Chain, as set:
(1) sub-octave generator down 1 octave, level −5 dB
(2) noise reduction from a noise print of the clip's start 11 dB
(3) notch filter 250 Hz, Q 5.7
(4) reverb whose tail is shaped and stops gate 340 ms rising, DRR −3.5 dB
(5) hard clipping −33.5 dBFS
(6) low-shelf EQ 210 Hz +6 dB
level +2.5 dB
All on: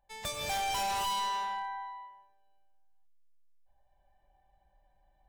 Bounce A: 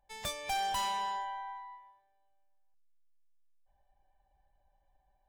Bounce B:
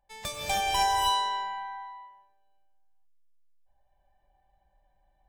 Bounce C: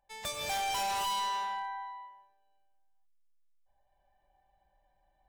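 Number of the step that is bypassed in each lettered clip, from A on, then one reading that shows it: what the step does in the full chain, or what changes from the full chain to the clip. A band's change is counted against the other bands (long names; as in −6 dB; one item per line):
4, change in momentary loudness spread +2 LU
5, distortion level −6 dB
6, 250 Hz band −2.5 dB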